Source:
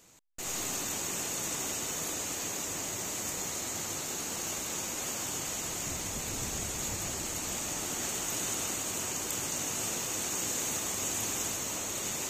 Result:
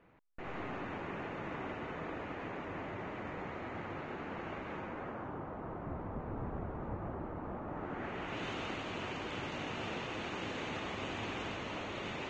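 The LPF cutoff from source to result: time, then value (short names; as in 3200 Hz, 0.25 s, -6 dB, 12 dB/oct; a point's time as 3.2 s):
LPF 24 dB/oct
4.72 s 2100 Hz
5.45 s 1300 Hz
7.66 s 1300 Hz
8.45 s 3100 Hz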